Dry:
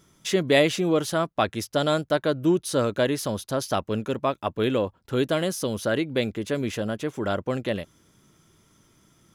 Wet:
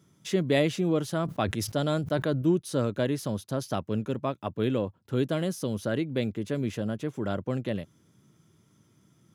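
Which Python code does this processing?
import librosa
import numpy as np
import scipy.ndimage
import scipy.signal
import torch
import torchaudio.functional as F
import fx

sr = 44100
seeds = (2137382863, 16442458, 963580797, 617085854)

y = scipy.signal.sosfilt(scipy.signal.butter(4, 85.0, 'highpass', fs=sr, output='sos'), x)
y = fx.peak_eq(y, sr, hz=130.0, db=9.0, octaves=2.8)
y = fx.sustainer(y, sr, db_per_s=58.0, at=(1.17, 2.42))
y = y * librosa.db_to_amplitude(-8.0)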